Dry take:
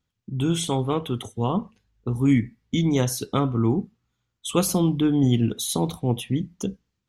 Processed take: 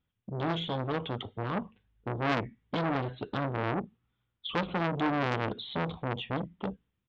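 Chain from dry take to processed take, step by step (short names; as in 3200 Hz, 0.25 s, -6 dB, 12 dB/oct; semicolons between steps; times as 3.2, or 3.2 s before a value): downsampling 8000 Hz; core saturation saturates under 2000 Hz; gain -2.5 dB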